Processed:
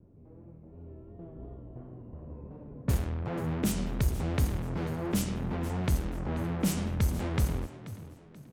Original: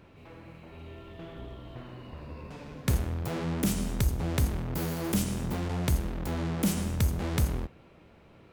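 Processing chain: low-pass opened by the level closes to 310 Hz, open at -22.5 dBFS; vibrato 2.8 Hz 61 cents; frequency-shifting echo 0.483 s, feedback 36%, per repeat +40 Hz, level -15 dB; gain -1 dB

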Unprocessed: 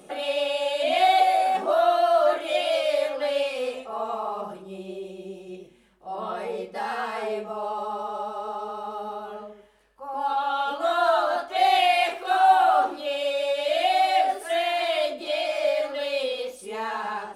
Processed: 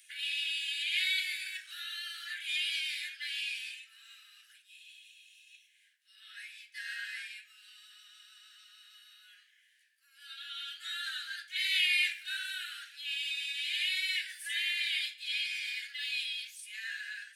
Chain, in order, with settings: steep high-pass 1600 Hz 96 dB/oct; gain -1.5 dB

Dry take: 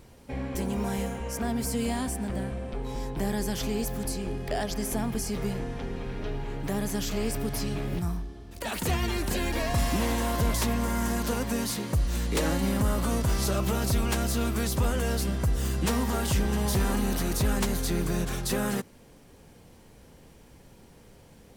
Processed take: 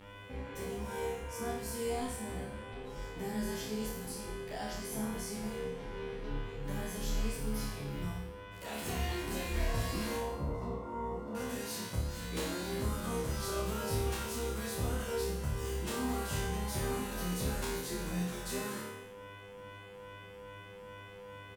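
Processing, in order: buzz 100 Hz, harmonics 35, -41 dBFS -4 dB/oct; 10.16–11.35 polynomial smoothing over 65 samples; flutter echo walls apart 4.8 m, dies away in 0.84 s; endless flanger 11.8 ms +2.4 Hz; gain -9 dB

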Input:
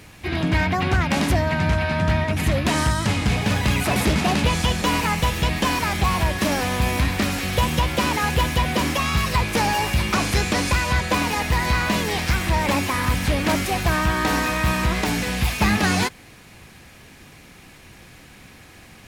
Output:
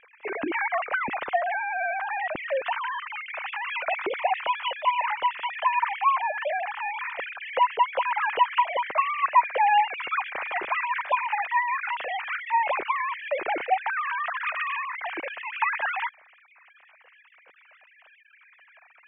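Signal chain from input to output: sine-wave speech; LPF 2900 Hz 24 dB/oct; gain -6 dB

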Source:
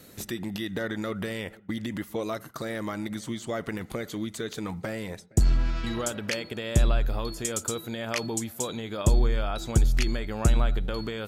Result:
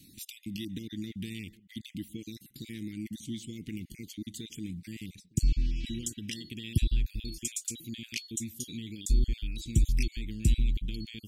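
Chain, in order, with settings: random spectral dropouts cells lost 26%; elliptic band-stop 300–2500 Hz, stop band 50 dB; gain -2.5 dB

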